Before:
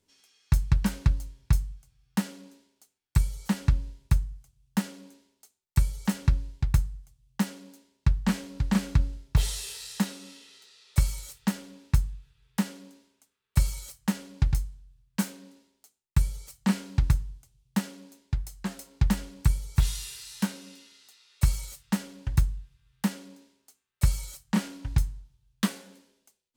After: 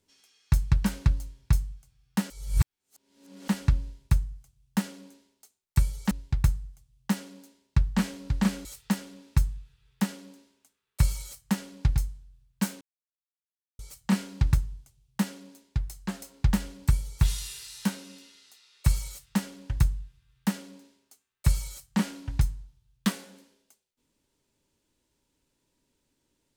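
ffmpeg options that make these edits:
-filter_complex "[0:a]asplit=7[a][b][c][d][e][f][g];[a]atrim=end=2.302[h];[b]atrim=start=2.298:end=3.482,asetpts=PTS-STARTPTS,areverse[i];[c]atrim=start=3.478:end=6.112[j];[d]atrim=start=6.408:end=8.952[k];[e]atrim=start=11.218:end=15.38,asetpts=PTS-STARTPTS,afade=t=out:st=4.158:d=0.004:c=hsin[l];[f]atrim=start=15.38:end=16.36,asetpts=PTS-STARTPTS,volume=0[m];[g]atrim=start=16.36,asetpts=PTS-STARTPTS,afade=t=in:d=0.004:c=hsin[n];[h][i]acrossfade=d=0.004:c1=hsin:c2=hsin[o];[o][j]acrossfade=d=0.004:c1=hsin:c2=hsin[p];[p][k]acrossfade=d=0.004:c1=hsin:c2=hsin[q];[l][m][n]concat=n=3:v=0:a=1[r];[q][r]acrossfade=d=0.004:c1=hsin:c2=hsin"

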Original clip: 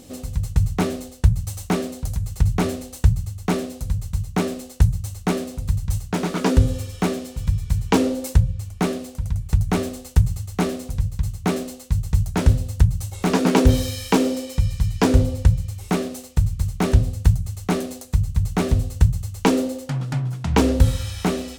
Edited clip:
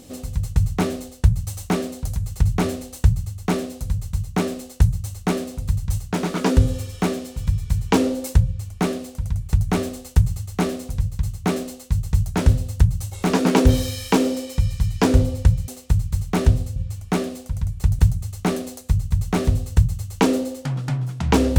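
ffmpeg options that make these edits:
-filter_complex "[0:a]asplit=4[a][b][c][d];[a]atrim=end=15.682[e];[b]atrim=start=16.148:end=17.232[f];[c]atrim=start=8.448:end=9.682[g];[d]atrim=start=17.228[h];[e][f]acrossfade=d=0.004:c1=hsin:c2=hsin[i];[i][g]acrossfade=d=0.004:c1=hsin:c2=hsin[j];[j][h]acrossfade=d=0.004:c1=hsin:c2=hsin"

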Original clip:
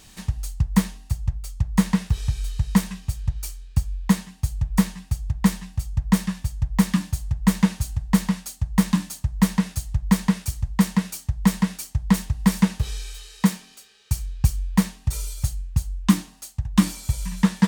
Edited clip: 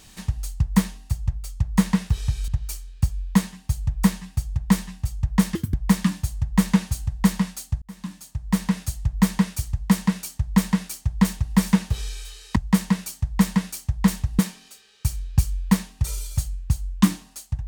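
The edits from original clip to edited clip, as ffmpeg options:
-filter_complex "[0:a]asplit=7[a][b][c][d][e][f][g];[a]atrim=end=2.482[h];[b]atrim=start=3.218:end=6.294[i];[c]atrim=start=6.29:end=6.63,asetpts=PTS-STARTPTS,asetrate=79821,aresample=44100[j];[d]atrim=start=6.626:end=8.71,asetpts=PTS-STARTPTS,afade=t=out:st=2.08:d=0.004:c=hsin[k];[e]atrim=start=8.71:end=13.452,asetpts=PTS-STARTPTS,afade=t=in:d=1.03[l];[f]atrim=start=10.618:end=12.452[m];[g]atrim=start=13.448[n];[h][i]acrossfade=d=0.004:c1=hsin:c2=hsin[o];[o][j]acrossfade=d=0.004:c1=hsin:c2=hsin[p];[k][l]concat=n=2:v=0:a=1[q];[p][q]acrossfade=d=0.004:c1=hsin:c2=hsin[r];[r][m]acrossfade=d=0.004:c1=hsin:c2=hsin[s];[s][n]acrossfade=d=0.004:c1=hsin:c2=hsin"

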